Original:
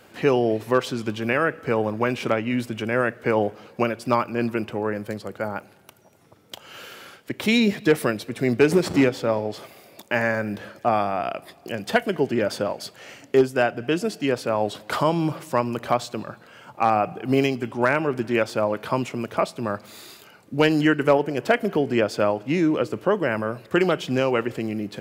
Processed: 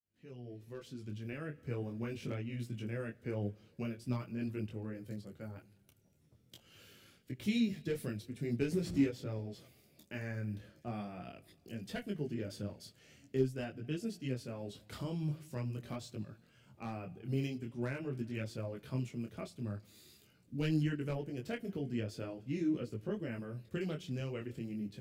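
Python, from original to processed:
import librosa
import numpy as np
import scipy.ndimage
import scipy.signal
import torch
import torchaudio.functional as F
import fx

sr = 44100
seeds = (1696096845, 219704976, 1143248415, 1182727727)

y = fx.fade_in_head(x, sr, length_s=1.74)
y = fx.tone_stack(y, sr, knobs='10-0-1')
y = fx.detune_double(y, sr, cents=15)
y = y * 10.0 ** (8.5 / 20.0)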